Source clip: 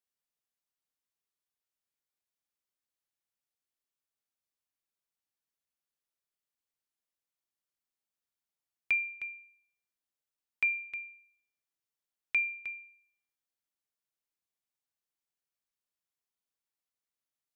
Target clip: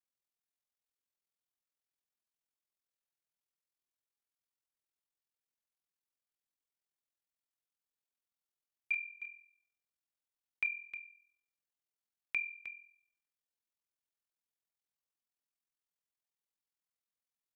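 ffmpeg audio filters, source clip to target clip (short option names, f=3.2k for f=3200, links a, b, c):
-filter_complex "[0:a]asplit=2[a][b];[b]adelay=36,volume=-11.5dB[c];[a][c]amix=inputs=2:normalize=0,aeval=exprs='val(0)*sin(2*PI*21*n/s)':c=same,volume=-3dB"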